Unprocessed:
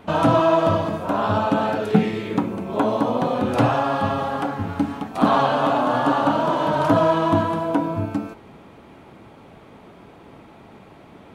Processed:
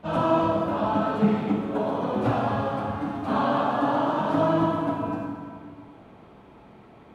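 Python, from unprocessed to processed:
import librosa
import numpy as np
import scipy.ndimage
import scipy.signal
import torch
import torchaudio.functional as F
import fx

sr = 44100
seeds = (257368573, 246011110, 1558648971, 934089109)

y = fx.high_shelf(x, sr, hz=4300.0, db=-7.0)
y = fx.stretch_vocoder_free(y, sr, factor=0.63)
y = fx.rev_plate(y, sr, seeds[0], rt60_s=2.0, hf_ratio=0.75, predelay_ms=0, drr_db=-1.5)
y = y * librosa.db_to_amplitude(-5.0)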